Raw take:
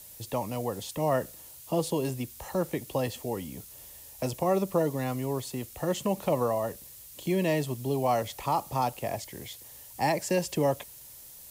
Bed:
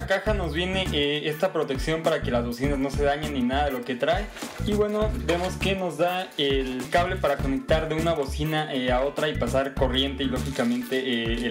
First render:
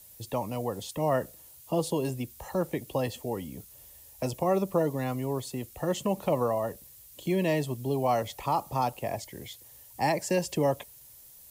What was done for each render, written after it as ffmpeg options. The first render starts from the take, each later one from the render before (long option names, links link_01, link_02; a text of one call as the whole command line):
ffmpeg -i in.wav -af "afftdn=noise_reduction=6:noise_floor=-49" out.wav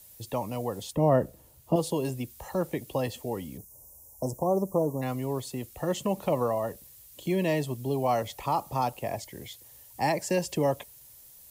ffmpeg -i in.wav -filter_complex "[0:a]asettb=1/sr,asplit=3[link_01][link_02][link_03];[link_01]atrim=end=0.924[link_04];[link_02]atrim=start=0.92:end=1.76,asetpts=PTS-STARTPTS,afade=type=in:duration=0.004:curve=qsin,afade=type=out:start_time=0.836:duration=0.004:curve=qsin,tiltshelf=frequency=1100:gain=7.5[link_05];[link_03]atrim=start=1.756[link_06];[link_04][link_05]acrossfade=duration=0.004:curve1=hsin:curve2=qsin[link_07];[link_07][link_06]acrossfade=duration=0.004:curve1=qsin:curve2=hsin,asplit=3[link_08][link_09][link_10];[link_08]afade=type=out:start_time=3.57:duration=0.02[link_11];[link_09]asuperstop=centerf=2500:order=12:qfactor=0.55,afade=type=in:start_time=3.57:duration=0.02,afade=type=out:start_time=5.01:duration=0.02[link_12];[link_10]afade=type=in:start_time=5.01:duration=0.02[link_13];[link_11][link_12][link_13]amix=inputs=3:normalize=0" out.wav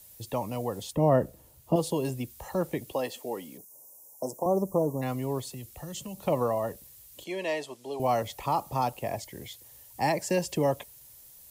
ffmpeg -i in.wav -filter_complex "[0:a]asettb=1/sr,asplit=3[link_01][link_02][link_03];[link_01]atrim=end=2.924[link_04];[link_02]atrim=start=2.92:end=4.46,asetpts=PTS-STARTPTS,afade=type=in:duration=0.004:curve=qsin,afade=type=out:start_time=1.536:duration=0.004:curve=qsin,highpass=290[link_05];[link_03]atrim=start=4.456[link_06];[link_04][link_05]acrossfade=duration=0.004:curve1=hsin:curve2=qsin[link_07];[link_07][link_06]acrossfade=duration=0.004:curve1=qsin:curve2=hsin,asettb=1/sr,asplit=3[link_08][link_09][link_10];[link_08]atrim=end=5.504[link_11];[link_09]atrim=start=5.5:end=6.27,asetpts=PTS-STARTPTS,afade=type=in:duration=0.004:curve=qsin,afade=type=out:start_time=0.766:duration=0.004:curve=qsin,acrossover=split=150|3000[link_12][link_13][link_14];[link_13]acompressor=threshold=-45dB:ratio=4:attack=3.2:release=140:knee=2.83:detection=peak[link_15];[link_12][link_15][link_14]amix=inputs=3:normalize=0[link_16];[link_10]atrim=start=6.266[link_17];[link_11][link_16]acrossfade=duration=0.004:curve1=hsin:curve2=qsin[link_18];[link_18][link_17]acrossfade=duration=0.004:curve1=qsin:curve2=hsin,asettb=1/sr,asplit=3[link_19][link_20][link_21];[link_19]atrim=end=7.244[link_22];[link_20]atrim=start=7.24:end=8,asetpts=PTS-STARTPTS,afade=type=in:duration=0.004:curve=qsin,afade=type=out:start_time=0.756:duration=0.004:curve=qsin,highpass=510,lowpass=7900[link_23];[link_21]atrim=start=7.996[link_24];[link_22][link_23]acrossfade=duration=0.004:curve1=hsin:curve2=qsin[link_25];[link_25][link_24]acrossfade=duration=0.004:curve1=qsin:curve2=hsin" out.wav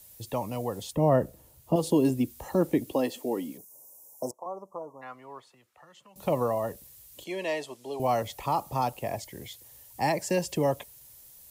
ffmpeg -i in.wav -filter_complex "[0:a]asettb=1/sr,asplit=3[link_01][link_02][link_03];[link_01]atrim=end=1.834[link_04];[link_02]atrim=start=1.83:end=3.52,asetpts=PTS-STARTPTS,afade=type=in:duration=0.004:curve=qsin,afade=type=out:start_time=1.686:duration=0.004:curve=qsin,equalizer=frequency=280:width=1.5:gain=11[link_05];[link_03]atrim=start=3.516[link_06];[link_04][link_05]acrossfade=duration=0.004:curve1=hsin:curve2=qsin[link_07];[link_07][link_06]acrossfade=duration=0.004:curve1=qsin:curve2=hsin,asettb=1/sr,asplit=3[link_08][link_09][link_10];[link_08]atrim=end=4.314[link_11];[link_09]atrim=start=4.31:end=6.16,asetpts=PTS-STARTPTS,afade=type=in:duration=0.004:curve=qsin,afade=type=out:start_time=1.846:duration=0.004:curve=qsin,bandpass=frequency=1300:width_type=q:width=2.1[link_12];[link_10]atrim=start=6.156[link_13];[link_11][link_12]acrossfade=duration=0.004:curve1=hsin:curve2=qsin[link_14];[link_14][link_13]acrossfade=duration=0.004:curve1=qsin:curve2=hsin" out.wav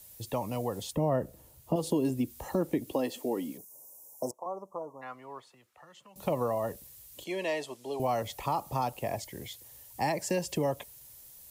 ffmpeg -i in.wav -af "acompressor=threshold=-28dB:ratio=2" out.wav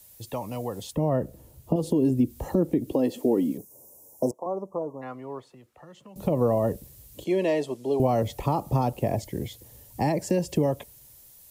ffmpeg -i in.wav -filter_complex "[0:a]acrossover=split=530|1700[link_01][link_02][link_03];[link_01]dynaudnorm=framelen=420:gausssize=7:maxgain=13dB[link_04];[link_04][link_02][link_03]amix=inputs=3:normalize=0,alimiter=limit=-13dB:level=0:latency=1:release=247" out.wav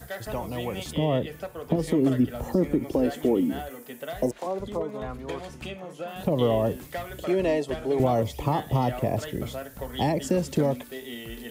ffmpeg -i in.wav -i bed.wav -filter_complex "[1:a]volume=-12.5dB[link_01];[0:a][link_01]amix=inputs=2:normalize=0" out.wav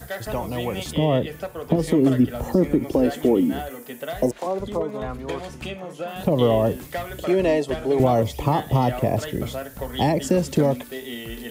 ffmpeg -i in.wav -af "volume=4.5dB" out.wav